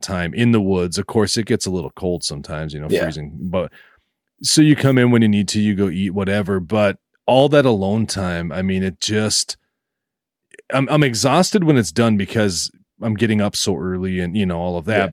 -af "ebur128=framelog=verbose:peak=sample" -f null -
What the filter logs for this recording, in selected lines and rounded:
Integrated loudness:
  I:         -17.9 LUFS
  Threshold: -28.2 LUFS
Loudness range:
  LRA:         4.9 LU
  Threshold: -38.2 LUFS
  LRA low:   -21.4 LUFS
  LRA high:  -16.5 LUFS
Sample peak:
  Peak:       -1.6 dBFS